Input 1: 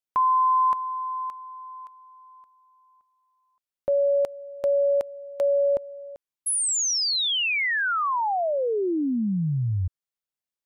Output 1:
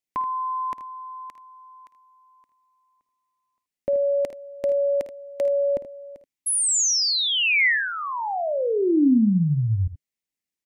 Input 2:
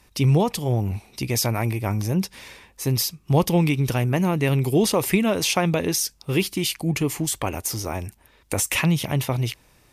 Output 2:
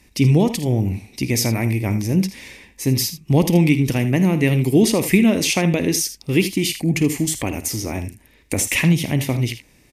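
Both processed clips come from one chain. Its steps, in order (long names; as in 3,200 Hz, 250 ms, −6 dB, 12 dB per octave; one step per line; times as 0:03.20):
drawn EQ curve 140 Hz 0 dB, 270 Hz +6 dB, 400 Hz 0 dB, 1,400 Hz −9 dB, 2,000 Hz +4 dB, 3,400 Hz −2 dB, 6,700 Hz +1 dB, 13,000 Hz −2 dB
on a send: ambience of single reflections 53 ms −15 dB, 79 ms −13 dB
on the sum: level +2.5 dB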